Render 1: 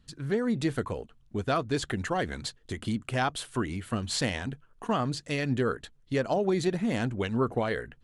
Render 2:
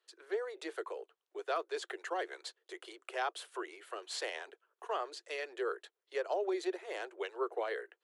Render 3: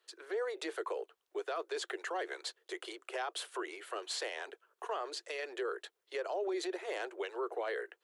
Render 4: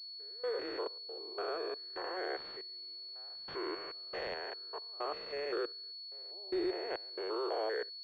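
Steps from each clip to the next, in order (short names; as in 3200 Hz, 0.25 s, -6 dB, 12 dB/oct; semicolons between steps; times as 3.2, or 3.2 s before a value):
steep high-pass 350 Hz 96 dB/oct; high shelf 4700 Hz -6 dB; gain -6.5 dB
limiter -34.5 dBFS, peak gain reduction 10.5 dB; gain +5.5 dB
stepped spectrum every 0.2 s; step gate "..xx.xxx.xxx.." 69 bpm -24 dB; pulse-width modulation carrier 4400 Hz; gain +5.5 dB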